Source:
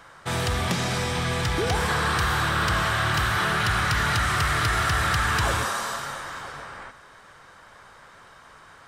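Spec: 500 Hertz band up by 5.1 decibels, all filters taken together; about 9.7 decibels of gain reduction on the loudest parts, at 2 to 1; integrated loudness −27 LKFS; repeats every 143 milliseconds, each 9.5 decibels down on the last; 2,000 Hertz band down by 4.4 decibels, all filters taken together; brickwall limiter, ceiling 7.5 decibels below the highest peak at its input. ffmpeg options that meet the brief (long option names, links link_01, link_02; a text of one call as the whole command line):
ffmpeg -i in.wav -af "equalizer=frequency=500:width_type=o:gain=6.5,equalizer=frequency=2000:width_type=o:gain=-6.5,acompressor=threshold=-37dB:ratio=2,alimiter=level_in=5.5dB:limit=-24dB:level=0:latency=1,volume=-5.5dB,aecho=1:1:143|286|429|572:0.335|0.111|0.0365|0.012,volume=10dB" out.wav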